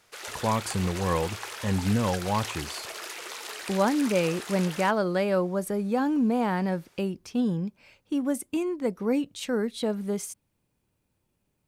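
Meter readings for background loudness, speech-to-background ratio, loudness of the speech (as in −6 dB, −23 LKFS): −36.5 LKFS, 8.5 dB, −28.0 LKFS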